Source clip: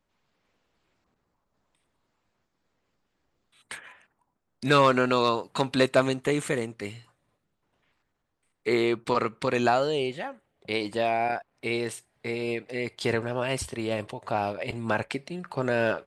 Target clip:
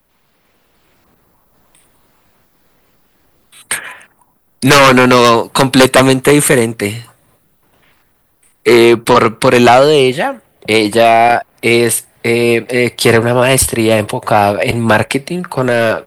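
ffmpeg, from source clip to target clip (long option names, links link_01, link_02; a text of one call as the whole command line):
ffmpeg -i in.wav -filter_complex "[0:a]acrossover=split=160|710|5000[link_01][link_02][link_03][link_04];[link_04]aexciter=amount=5.5:drive=5.7:freq=9400[link_05];[link_01][link_02][link_03][link_05]amix=inputs=4:normalize=0,aeval=exprs='0.447*sin(PI/2*3.16*val(0)/0.447)':channel_layout=same,dynaudnorm=framelen=110:gausssize=17:maxgain=5dB,volume=2dB" out.wav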